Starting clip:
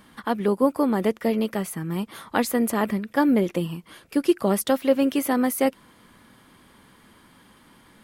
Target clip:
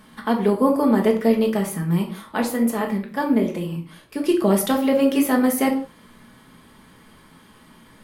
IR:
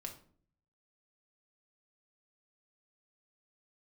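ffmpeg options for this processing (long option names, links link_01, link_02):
-filter_complex "[0:a]asettb=1/sr,asplit=3[link_01][link_02][link_03];[link_01]atrim=end=2.074[link_04];[link_02]atrim=start=2.07:end=4.26,asetpts=PTS-STARTPTS,afade=type=in:duration=0.004:curve=qsin,afade=type=out:start_time=2.186:duration=0.004:curve=qsin,flanger=delay=8.5:depth=8:regen=-64:speed=1.3:shape=sinusoidal[link_05];[link_03]atrim=start=4.256[link_06];[link_04][link_05]acrossfade=duration=0.004:curve1=hsin:curve2=qsin[link_07];[link_07][link_06]acrossfade=duration=0.004:curve1=qsin:curve2=hsin[link_08];[1:a]atrim=start_sample=2205,afade=type=out:start_time=0.23:duration=0.01,atrim=end_sample=10584,asetrate=41013,aresample=44100[link_09];[link_08][link_09]afir=irnorm=-1:irlink=0,volume=6dB"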